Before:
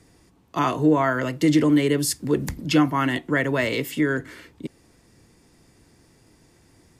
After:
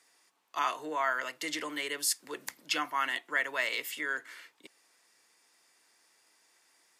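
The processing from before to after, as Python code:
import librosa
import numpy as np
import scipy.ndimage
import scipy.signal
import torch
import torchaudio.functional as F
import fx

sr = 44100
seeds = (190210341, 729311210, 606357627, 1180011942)

y = scipy.signal.sosfilt(scipy.signal.butter(2, 1000.0, 'highpass', fs=sr, output='sos'), x)
y = y * librosa.db_to_amplitude(-4.0)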